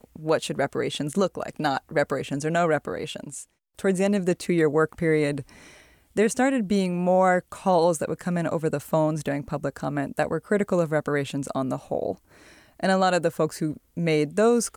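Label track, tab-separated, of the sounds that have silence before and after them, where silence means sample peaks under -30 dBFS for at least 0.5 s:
6.170000	12.120000	sound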